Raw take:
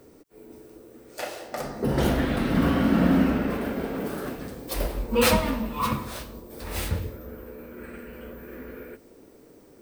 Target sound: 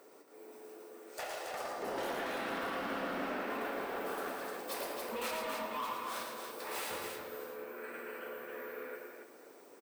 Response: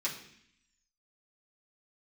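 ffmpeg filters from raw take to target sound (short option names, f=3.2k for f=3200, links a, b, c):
-filter_complex "[0:a]highpass=440,equalizer=f=1k:t=o:w=1.9:g=6,acompressor=threshold=-31dB:ratio=3,asoftclip=type=tanh:threshold=-29dB,aecho=1:1:113|278|581|661:0.562|0.562|0.119|0.1,asplit=2[a][b];[1:a]atrim=start_sample=2205[c];[b][c]afir=irnorm=-1:irlink=0,volume=-12.5dB[d];[a][d]amix=inputs=2:normalize=0,volume=-5.5dB"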